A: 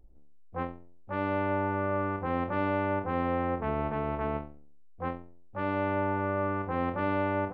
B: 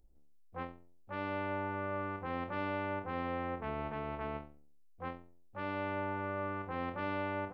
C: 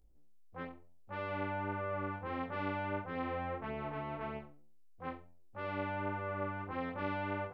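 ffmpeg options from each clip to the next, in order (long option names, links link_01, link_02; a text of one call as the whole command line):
ffmpeg -i in.wav -af "highshelf=frequency=2300:gain=11.5,volume=-9dB" out.wav
ffmpeg -i in.wav -af "flanger=delay=18.5:depth=3.2:speed=1.6,volume=2dB" out.wav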